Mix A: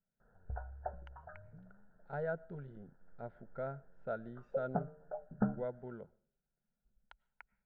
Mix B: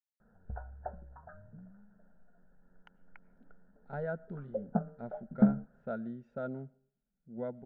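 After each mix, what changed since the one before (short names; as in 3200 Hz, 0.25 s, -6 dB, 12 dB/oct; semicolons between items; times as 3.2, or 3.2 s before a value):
speech: entry +1.80 s; master: add bell 220 Hz +11 dB 0.63 oct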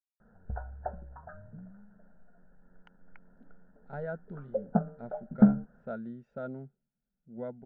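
background +4.5 dB; reverb: off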